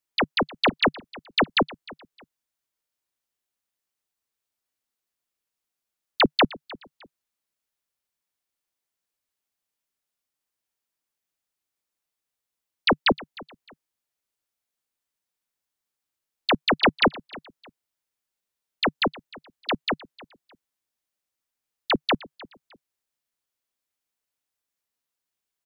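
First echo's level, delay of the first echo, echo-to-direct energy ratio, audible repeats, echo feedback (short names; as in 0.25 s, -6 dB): -21.0 dB, 0.307 s, -20.5 dB, 2, 28%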